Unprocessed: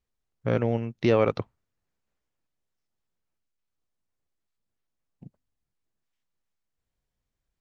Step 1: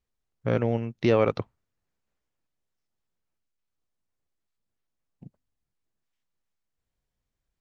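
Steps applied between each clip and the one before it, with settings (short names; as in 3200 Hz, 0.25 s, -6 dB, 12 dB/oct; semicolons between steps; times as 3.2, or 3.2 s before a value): nothing audible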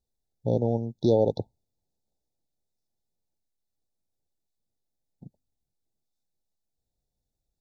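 brick-wall FIR band-stop 920–3400 Hz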